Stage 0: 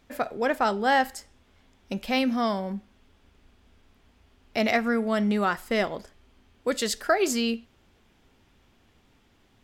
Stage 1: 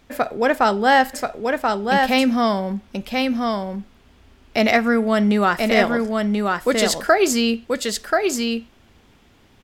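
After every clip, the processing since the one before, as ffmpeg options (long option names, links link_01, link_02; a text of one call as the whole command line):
ffmpeg -i in.wav -af "aecho=1:1:1033:0.668,volume=7dB" out.wav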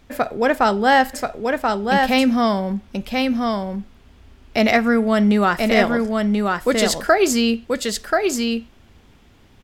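ffmpeg -i in.wav -af "lowshelf=frequency=140:gain=6" out.wav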